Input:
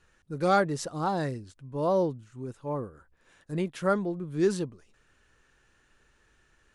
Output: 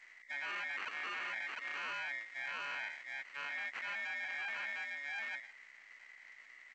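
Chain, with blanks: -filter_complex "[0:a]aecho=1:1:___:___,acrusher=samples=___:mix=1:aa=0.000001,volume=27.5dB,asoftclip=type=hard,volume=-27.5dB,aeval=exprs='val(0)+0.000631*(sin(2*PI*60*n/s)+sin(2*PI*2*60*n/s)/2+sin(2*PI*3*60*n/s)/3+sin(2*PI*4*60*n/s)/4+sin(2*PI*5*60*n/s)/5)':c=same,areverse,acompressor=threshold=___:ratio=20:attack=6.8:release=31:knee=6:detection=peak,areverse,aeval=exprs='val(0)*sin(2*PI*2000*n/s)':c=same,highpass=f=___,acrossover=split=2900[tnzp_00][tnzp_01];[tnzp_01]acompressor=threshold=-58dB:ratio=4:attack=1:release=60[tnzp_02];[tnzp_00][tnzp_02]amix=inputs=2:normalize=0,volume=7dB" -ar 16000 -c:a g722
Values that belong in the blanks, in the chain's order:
706, 0.376, 28, -43dB, 340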